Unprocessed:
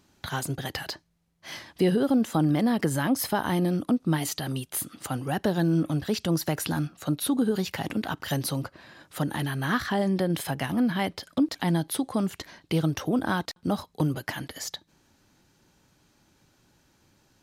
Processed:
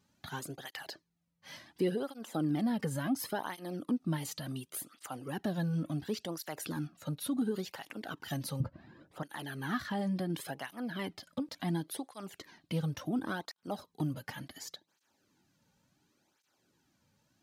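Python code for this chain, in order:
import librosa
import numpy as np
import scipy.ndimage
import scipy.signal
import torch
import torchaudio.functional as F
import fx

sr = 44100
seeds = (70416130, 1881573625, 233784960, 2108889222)

y = fx.tilt_eq(x, sr, slope=-4.0, at=(8.6, 9.23))
y = fx.flanger_cancel(y, sr, hz=0.7, depth_ms=3.1)
y = y * librosa.db_to_amplitude(-7.0)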